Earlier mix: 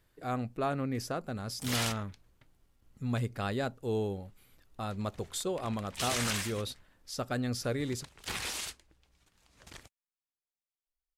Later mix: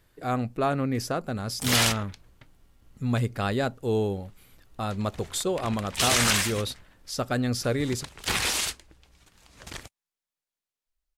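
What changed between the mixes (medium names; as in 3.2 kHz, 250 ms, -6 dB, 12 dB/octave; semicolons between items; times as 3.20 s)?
speech +6.5 dB; background +10.5 dB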